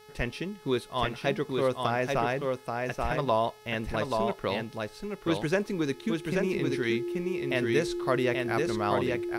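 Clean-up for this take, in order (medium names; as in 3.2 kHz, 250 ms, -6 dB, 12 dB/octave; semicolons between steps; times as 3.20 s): de-hum 426.2 Hz, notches 14; band-stop 350 Hz, Q 30; expander -39 dBFS, range -21 dB; inverse comb 832 ms -3.5 dB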